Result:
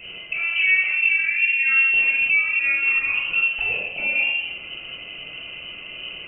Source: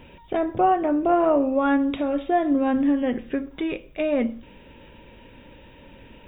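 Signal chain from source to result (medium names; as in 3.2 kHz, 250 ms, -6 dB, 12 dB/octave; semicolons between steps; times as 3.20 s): 2.28–3.14 s: elliptic high-pass 330 Hz; compression, threshold -25 dBFS, peak gain reduction 10.5 dB; peak limiter -25.5 dBFS, peak gain reduction 9.5 dB; reverberation RT60 1.1 s, pre-delay 3 ms, DRR -5.5 dB; frequency inversion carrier 3 kHz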